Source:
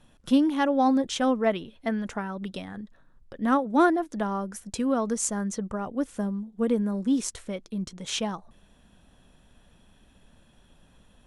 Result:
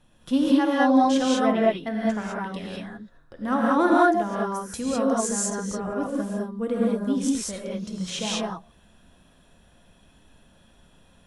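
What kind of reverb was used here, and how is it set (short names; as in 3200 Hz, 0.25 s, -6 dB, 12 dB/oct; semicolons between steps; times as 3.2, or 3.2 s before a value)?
non-linear reverb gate 0.23 s rising, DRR -5 dB; gain -3 dB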